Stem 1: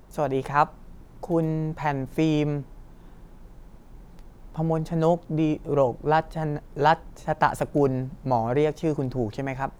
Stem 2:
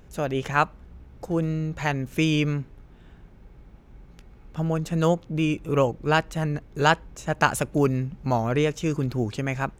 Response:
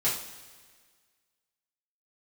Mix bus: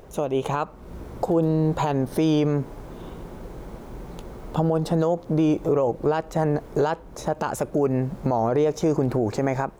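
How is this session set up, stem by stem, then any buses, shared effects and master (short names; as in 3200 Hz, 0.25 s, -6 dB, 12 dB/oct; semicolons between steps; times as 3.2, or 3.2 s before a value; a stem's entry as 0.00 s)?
+3.0 dB, 0.00 s, no send, low shelf 490 Hz -11.5 dB; compressor 6:1, threshold -35 dBFS, peak gain reduction 17.5 dB
-2.0 dB, 0.00 s, no send, compressor 1.5:1, threshold -43 dBFS, peak gain reduction 10.5 dB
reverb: off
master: bell 470 Hz +10.5 dB 1.9 oct; AGC gain up to 7.5 dB; limiter -13 dBFS, peak gain reduction 10.5 dB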